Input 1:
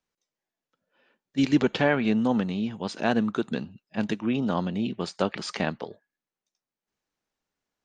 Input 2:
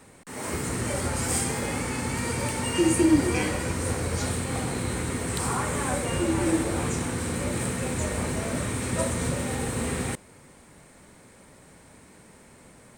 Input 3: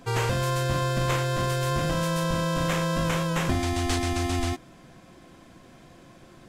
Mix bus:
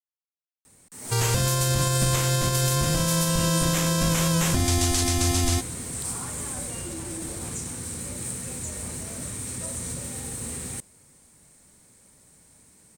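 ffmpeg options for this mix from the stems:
ffmpeg -i stem1.wav -i stem2.wav -i stem3.wav -filter_complex "[1:a]alimiter=limit=-18.5dB:level=0:latency=1:release=30,adelay=650,volume=-11.5dB[link_01];[2:a]adelay=1050,volume=1.5dB[link_02];[link_01][link_02]amix=inputs=2:normalize=0,bass=frequency=250:gain=5,treble=frequency=4000:gain=15,alimiter=limit=-12dB:level=0:latency=1:release=137,volume=0dB" out.wav

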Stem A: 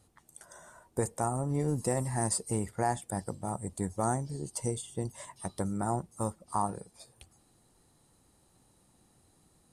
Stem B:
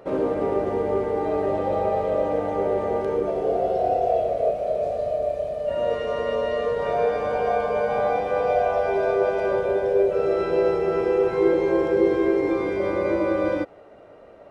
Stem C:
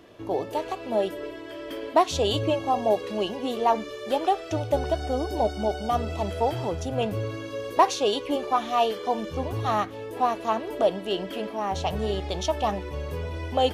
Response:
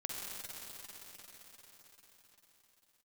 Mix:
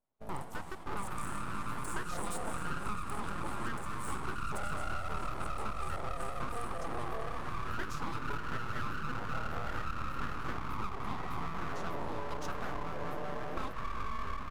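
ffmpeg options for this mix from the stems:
-filter_complex "[0:a]aderivative,volume=-8.5dB,asplit=2[link_01][link_02];[link_02]volume=-8dB[link_03];[1:a]lowpass=1000,lowshelf=frequency=480:width_type=q:width=3:gain=-9.5,flanger=delay=7.3:depth=5.6:regen=-63:speed=0.71:shape=triangular,adelay=800,volume=-6.5dB,asplit=3[link_04][link_05][link_06];[link_05]volume=-11.5dB[link_07];[link_06]volume=-3.5dB[link_08];[2:a]equalizer=frequency=2600:width=0.43:gain=-13,volume=-5dB,asplit=2[link_09][link_10];[link_10]volume=-21dB[link_11];[3:a]atrim=start_sample=2205[link_12];[link_03][link_07][link_11]amix=inputs=3:normalize=0[link_13];[link_13][link_12]afir=irnorm=-1:irlink=0[link_14];[link_08]aecho=0:1:206:1[link_15];[link_01][link_04][link_09][link_14][link_15]amix=inputs=5:normalize=0,agate=range=-28dB:threshold=-44dB:ratio=16:detection=peak,aeval=exprs='abs(val(0))':channel_layout=same,acompressor=threshold=-31dB:ratio=6"

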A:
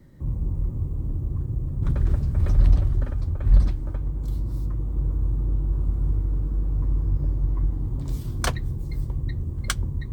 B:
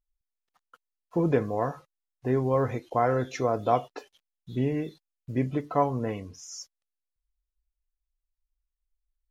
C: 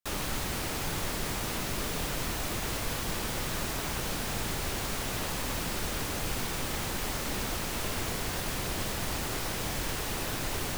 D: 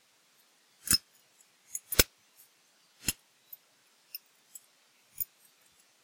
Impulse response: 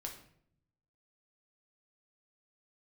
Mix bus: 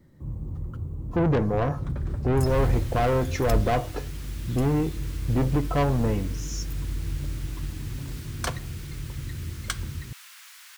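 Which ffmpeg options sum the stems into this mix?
-filter_complex "[0:a]highpass=frequency=79:poles=1,volume=-6dB,asplit=2[link_01][link_02];[link_02]volume=-5.5dB[link_03];[1:a]lowshelf=frequency=430:gain=10,asoftclip=type=tanh:threshold=-22.5dB,volume=1.5dB,asplit=2[link_04][link_05];[link_05]volume=-10.5dB[link_06];[2:a]highpass=frequency=1300:width=0.5412,highpass=frequency=1300:width=1.3066,adelay=2400,volume=-11dB[link_07];[3:a]adelay=1500,volume=-15dB[link_08];[4:a]atrim=start_sample=2205[link_09];[link_03][link_06]amix=inputs=2:normalize=0[link_10];[link_10][link_09]afir=irnorm=-1:irlink=0[link_11];[link_01][link_04][link_07][link_08][link_11]amix=inputs=5:normalize=0"

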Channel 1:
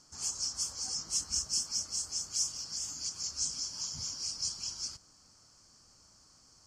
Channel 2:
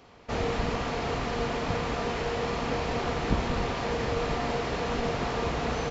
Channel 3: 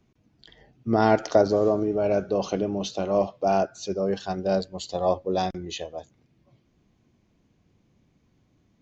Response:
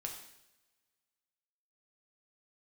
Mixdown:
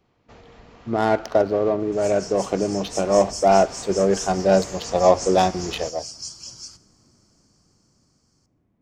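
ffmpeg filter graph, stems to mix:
-filter_complex "[0:a]adelay=1800,volume=-10dB,asplit=2[link_01][link_02];[link_02]volume=-11dB[link_03];[1:a]alimiter=limit=-22dB:level=0:latency=1:release=495,volume=-15dB[link_04];[2:a]lowshelf=frequency=470:gain=-4.5,adynamicsmooth=sensitivity=3:basefreq=1500,volume=0dB,asplit=2[link_05][link_06];[link_06]volume=-16.5dB[link_07];[3:a]atrim=start_sample=2205[link_08];[link_03][link_07]amix=inputs=2:normalize=0[link_09];[link_09][link_08]afir=irnorm=-1:irlink=0[link_10];[link_01][link_04][link_05][link_10]amix=inputs=4:normalize=0,dynaudnorm=framelen=300:gausssize=13:maxgain=11.5dB"

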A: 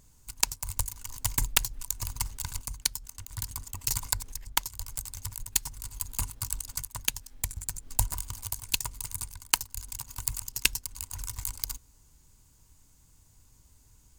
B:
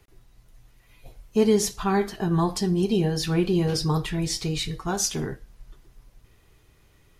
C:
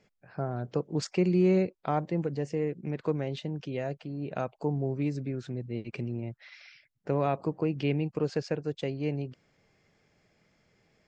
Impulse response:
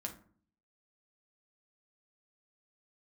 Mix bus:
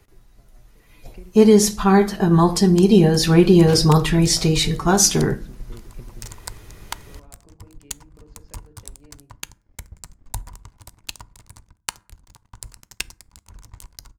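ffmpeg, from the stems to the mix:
-filter_complex "[0:a]adynamicsmooth=sensitivity=4.5:basefreq=1800,aeval=exprs='sgn(val(0))*max(abs(val(0))-0.00447,0)':channel_layout=same,adelay=2350,volume=-14.5dB,asplit=2[link_01][link_02];[link_02]volume=-11dB[link_03];[1:a]volume=1dB,asplit=3[link_04][link_05][link_06];[link_05]volume=-8.5dB[link_07];[2:a]acompressor=threshold=-36dB:ratio=4,volume=-12dB,asplit=2[link_08][link_09];[link_09]volume=-14dB[link_10];[link_06]apad=whole_len=488263[link_11];[link_08][link_11]sidechaingate=range=-33dB:threshold=-46dB:ratio=16:detection=peak[link_12];[3:a]atrim=start_sample=2205[link_13];[link_03][link_07][link_10]amix=inputs=3:normalize=0[link_14];[link_14][link_13]afir=irnorm=-1:irlink=0[link_15];[link_01][link_04][link_12][link_15]amix=inputs=4:normalize=0,equalizer=frequency=3000:width=1.6:gain=-3,dynaudnorm=framelen=160:gausssize=13:maxgain=12.5dB"

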